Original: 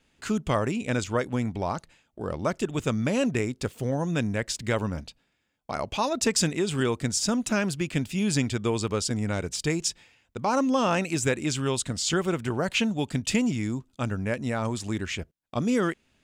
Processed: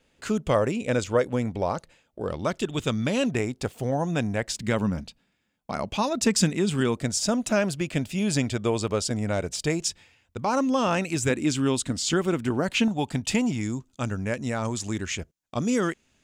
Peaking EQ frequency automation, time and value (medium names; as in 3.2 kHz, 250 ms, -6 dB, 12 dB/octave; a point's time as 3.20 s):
peaking EQ +7.5 dB 0.55 oct
520 Hz
from 2.28 s 3.5 kHz
from 3.31 s 740 Hz
from 4.52 s 200 Hz
from 6.97 s 620 Hz
from 9.85 s 86 Hz
from 11.30 s 270 Hz
from 12.88 s 820 Hz
from 13.61 s 6.6 kHz